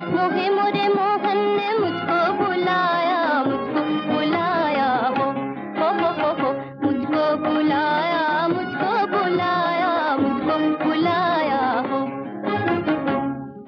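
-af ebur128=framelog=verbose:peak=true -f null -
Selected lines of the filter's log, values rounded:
Integrated loudness:
  I:         -21.0 LUFS
  Threshold: -30.9 LUFS
Loudness range:
  LRA:         1.5 LU
  Threshold: -40.9 LUFS
  LRA low:   -21.6 LUFS
  LRA high:  -20.1 LUFS
True peak:
  Peak:       -9.3 dBFS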